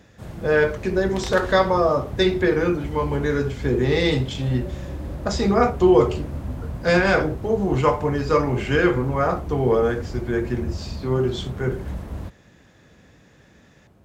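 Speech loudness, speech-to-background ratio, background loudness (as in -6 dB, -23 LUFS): -21.5 LUFS, 11.5 dB, -33.0 LUFS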